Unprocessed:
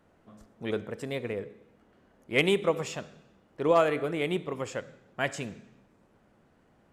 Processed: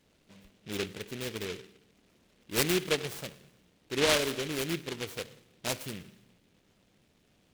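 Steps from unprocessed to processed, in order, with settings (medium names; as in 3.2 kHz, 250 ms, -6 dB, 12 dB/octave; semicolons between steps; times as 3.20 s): speed mistake 48 kHz file played as 44.1 kHz; delay time shaken by noise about 2.5 kHz, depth 0.22 ms; trim -3.5 dB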